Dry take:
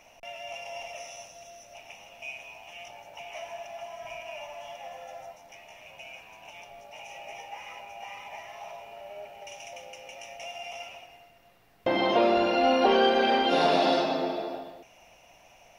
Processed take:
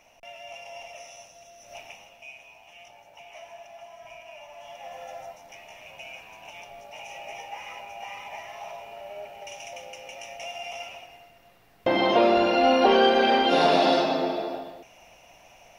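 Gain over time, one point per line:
1.57 s -2.5 dB
1.75 s +5.5 dB
2.25 s -5 dB
4.44 s -5 dB
5.02 s +3 dB

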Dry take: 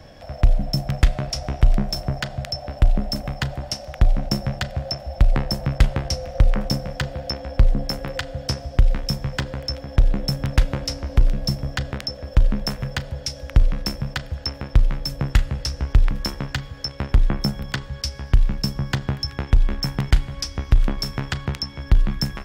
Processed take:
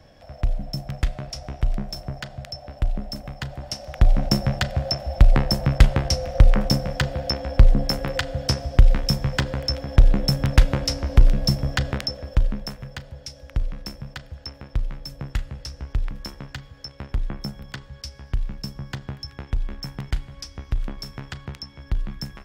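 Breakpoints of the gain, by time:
3.4 s -7 dB
4.23 s +2.5 dB
11.96 s +2.5 dB
12.8 s -9 dB

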